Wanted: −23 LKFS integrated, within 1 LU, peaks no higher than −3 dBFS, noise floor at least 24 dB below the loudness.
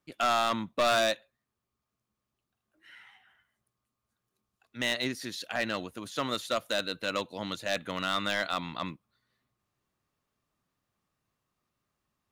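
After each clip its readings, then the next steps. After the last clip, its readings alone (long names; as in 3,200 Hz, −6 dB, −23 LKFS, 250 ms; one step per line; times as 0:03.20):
share of clipped samples 1.0%; peaks flattened at −21.5 dBFS; integrated loudness −31.0 LKFS; sample peak −21.5 dBFS; target loudness −23.0 LKFS
→ clipped peaks rebuilt −21.5 dBFS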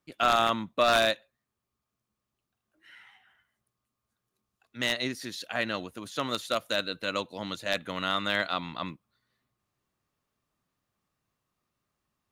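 share of clipped samples 0.0%; integrated loudness −29.0 LKFS; sample peak −12.5 dBFS; target loudness −23.0 LKFS
→ level +6 dB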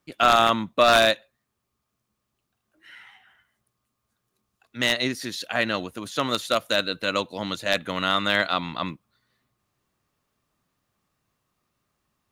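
integrated loudness −23.0 LKFS; sample peak −6.5 dBFS; background noise floor −79 dBFS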